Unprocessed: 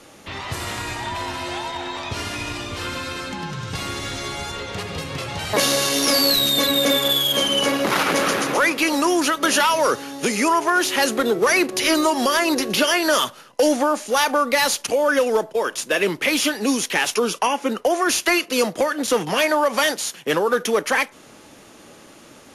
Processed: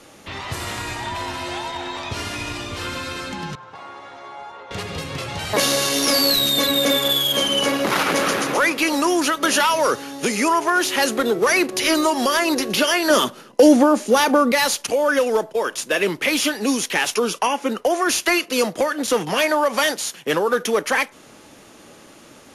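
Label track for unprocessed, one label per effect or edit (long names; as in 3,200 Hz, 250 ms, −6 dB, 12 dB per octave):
3.550000	4.710000	resonant band-pass 860 Hz, Q 2.1
13.100000	14.520000	hollow resonant body resonances 220/350 Hz, height 11 dB, ringing for 25 ms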